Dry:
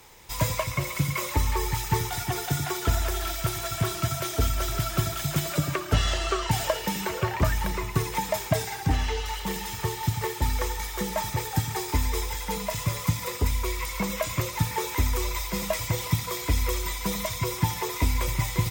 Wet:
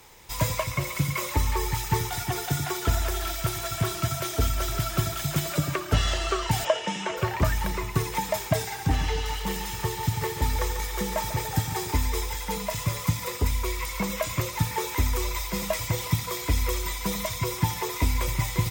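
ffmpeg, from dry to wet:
-filter_complex "[0:a]asplit=3[a][b][c];[a]afade=t=out:st=6.64:d=0.02[d];[b]highpass=180,equalizer=f=410:t=q:w=4:g=-3,equalizer=f=660:t=q:w=4:g=5,equalizer=f=3k:t=q:w=4:g=5,equalizer=f=4.4k:t=q:w=4:g=-9,lowpass=f=7.2k:w=0.5412,lowpass=f=7.2k:w=1.3066,afade=t=in:st=6.64:d=0.02,afade=t=out:st=7.16:d=0.02[e];[c]afade=t=in:st=7.16:d=0.02[f];[d][e][f]amix=inputs=3:normalize=0,asettb=1/sr,asplit=3[g][h][i];[g]atrim=end=8.644[j];[h]atrim=start=8.64:end=11.92,asetpts=PTS-STARTPTS,afade=t=in:d=0.004:c=qsin,afade=t=out:st=3.276:d=0.004:c=qsin,aecho=1:1:144|288|432|576|720|864:0.282|0.149|0.0792|0.042|0.0222|0.0118,atrim=end_sample=144648[k];[i]atrim=start=11.916[l];[j][k]acrossfade=d=0.004:c1=hsin:c2=qsin[m];[m][l]acrossfade=d=0.004:c1=qsin:c2=hsin"

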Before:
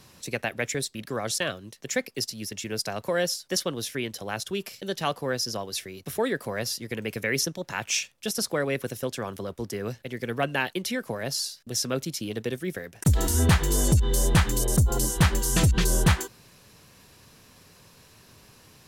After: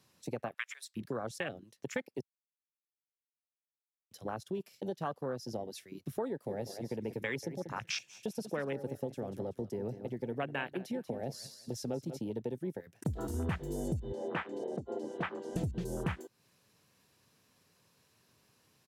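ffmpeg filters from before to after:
-filter_complex "[0:a]asettb=1/sr,asplit=3[a][b][c];[a]atrim=end=0.544[d];[b]atrim=start=0.54:end=0.97,asetpts=PTS-STARTPTS,afade=t=in:d=0.004:c=qsin,afade=t=out:st=0.426:d=0.004:c=qsin,highpass=f=980:w=0.5412,highpass=f=980:w=1.3066[e];[c]atrim=start=0.966[f];[d][e]acrossfade=d=0.004:c1=hsin:c2=qsin[g];[g][f]acrossfade=d=0.004:c1=qsin:c2=hsin,asplit=3[h][i][j];[h]afade=t=out:st=6.47:d=0.02[k];[i]aecho=1:1:189|378|567|756:0.282|0.0986|0.0345|0.0121,afade=t=in:st=6.47:d=0.02,afade=t=out:st=12.18:d=0.02[l];[j]afade=t=in:st=12.18:d=0.02[m];[k][l][m]amix=inputs=3:normalize=0,asettb=1/sr,asplit=3[n][o][p];[n]atrim=end=14.124[q];[o]atrim=start=14.12:end=15.56,asetpts=PTS-STARTPTS,afade=t=in:d=0.004:c=qsin,afade=t=out:st=1.436:d=0.004:c=qsin,highpass=330,lowpass=3k[r];[p]atrim=start=15.556[s];[q][r]acrossfade=d=0.004:c1=hsin:c2=qsin[t];[t][s]acrossfade=d=0.004:c1=qsin:c2=hsin,asplit=3[u][v][w];[u]atrim=end=2.21,asetpts=PTS-STARTPTS,afade=t=out:st=2.206:d=0.004:c=hsin[x];[v]atrim=start=2.21:end=4.11,asetpts=PTS-STARTPTS,volume=0[y];[w]atrim=start=4.11,asetpts=PTS-STARTPTS,afade=t=in:d=0.004:c=hsin[z];[x][y][z]concat=n=3:v=0:a=1,afwtdn=0.0355,highpass=98,acompressor=threshold=-37dB:ratio=3,volume=1dB"

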